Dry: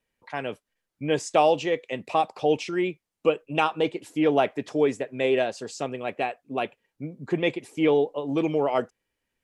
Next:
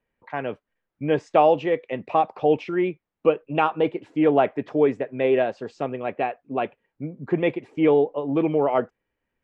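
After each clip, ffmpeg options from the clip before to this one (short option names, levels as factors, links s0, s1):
-af "lowpass=2000,volume=1.41"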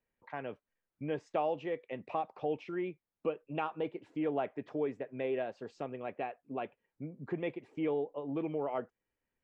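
-af "acompressor=threshold=0.0224:ratio=1.5,volume=0.376"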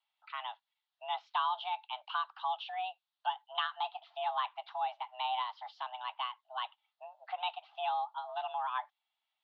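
-af "aexciter=amount=6.4:drive=6.4:freq=2800,highpass=f=330:t=q:w=0.5412,highpass=f=330:t=q:w=1.307,lowpass=f=3400:t=q:w=0.5176,lowpass=f=3400:t=q:w=0.7071,lowpass=f=3400:t=q:w=1.932,afreqshift=380"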